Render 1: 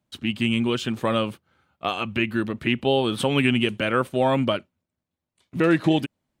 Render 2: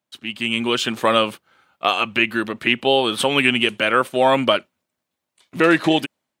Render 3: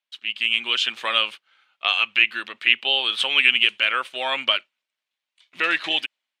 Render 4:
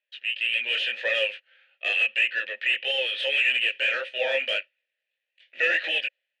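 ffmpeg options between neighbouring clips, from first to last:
-af "highpass=f=630:p=1,dynaudnorm=f=210:g=5:m=12.5dB"
-af "bandpass=f=2.9k:t=q:w=1.5:csg=0,volume=3dB"
-filter_complex "[0:a]flanger=delay=16:depth=7:speed=1.7,asplit=2[a][b];[b]highpass=f=720:p=1,volume=25dB,asoftclip=type=tanh:threshold=-3dB[c];[a][c]amix=inputs=2:normalize=0,lowpass=f=5.4k:p=1,volume=-6dB,asplit=3[d][e][f];[d]bandpass=f=530:t=q:w=8,volume=0dB[g];[e]bandpass=f=1.84k:t=q:w=8,volume=-6dB[h];[f]bandpass=f=2.48k:t=q:w=8,volume=-9dB[i];[g][h][i]amix=inputs=3:normalize=0"

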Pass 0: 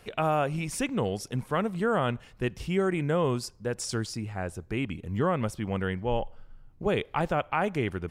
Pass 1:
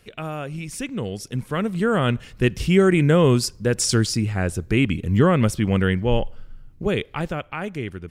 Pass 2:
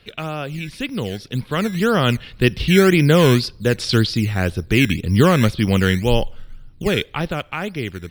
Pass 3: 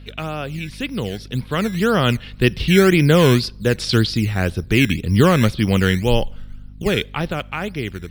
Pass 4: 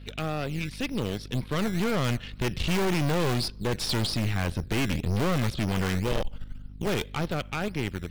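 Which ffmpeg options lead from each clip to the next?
-af "equalizer=f=830:t=o:w=1.3:g=-9,dynaudnorm=f=410:g=9:m=13.5dB"
-filter_complex "[0:a]acrossover=split=430[a][b];[a]acrusher=samples=16:mix=1:aa=0.000001:lfo=1:lforange=16:lforate=1.9[c];[b]highshelf=f=5.3k:t=q:w=3:g=-11[d];[c][d]amix=inputs=2:normalize=0,volume=3dB"
-af "aeval=exprs='val(0)+0.0126*(sin(2*PI*50*n/s)+sin(2*PI*2*50*n/s)/2+sin(2*PI*3*50*n/s)/3+sin(2*PI*4*50*n/s)/4+sin(2*PI*5*50*n/s)/5)':c=same"
-af "aeval=exprs='(tanh(15.8*val(0)+0.75)-tanh(0.75))/15.8':c=same"

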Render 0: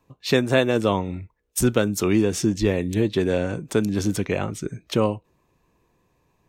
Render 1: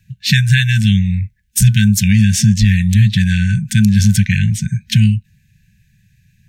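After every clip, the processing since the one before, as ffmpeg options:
-af "afftfilt=real='re*(1-between(b*sr/4096,220,1500))':imag='im*(1-between(b*sr/4096,220,1500))':win_size=4096:overlap=0.75,equalizer=f=110:w=1.4:g=7.5,alimiter=level_in=12.5dB:limit=-1dB:release=50:level=0:latency=1,volume=-1dB"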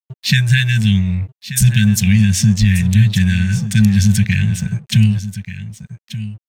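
-af "aeval=exprs='sgn(val(0))*max(abs(val(0))-0.0141,0)':c=same,aecho=1:1:1184:0.224,volume=-1dB"

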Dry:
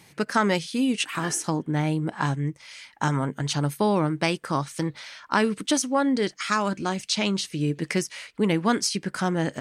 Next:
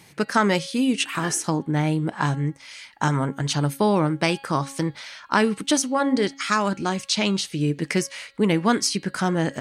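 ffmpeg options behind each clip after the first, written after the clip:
-af "bandreject=f=275:t=h:w=4,bandreject=f=550:t=h:w=4,bandreject=f=825:t=h:w=4,bandreject=f=1.1k:t=h:w=4,bandreject=f=1.375k:t=h:w=4,bandreject=f=1.65k:t=h:w=4,bandreject=f=1.925k:t=h:w=4,bandreject=f=2.2k:t=h:w=4,bandreject=f=2.475k:t=h:w=4,bandreject=f=2.75k:t=h:w=4,bandreject=f=3.025k:t=h:w=4,bandreject=f=3.3k:t=h:w=4,bandreject=f=3.575k:t=h:w=4,bandreject=f=3.85k:t=h:w=4,bandreject=f=4.125k:t=h:w=4,bandreject=f=4.4k:t=h:w=4,bandreject=f=4.675k:t=h:w=4,volume=2.5dB"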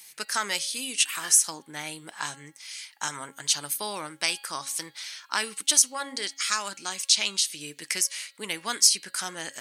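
-af "aderivative,volume=7dB"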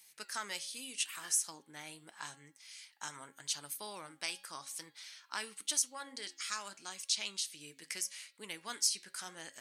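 -af "flanger=delay=4.3:depth=5.4:regen=-85:speed=0.83:shape=triangular,volume=-8dB"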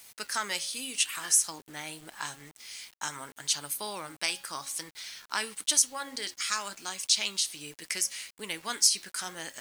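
-af "acrusher=bits=9:mix=0:aa=0.000001,volume=8.5dB"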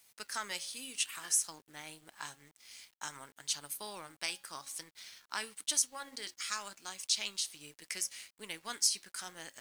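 -af "aeval=exprs='sgn(val(0))*max(abs(val(0))-0.00266,0)':c=same,volume=-6.5dB"

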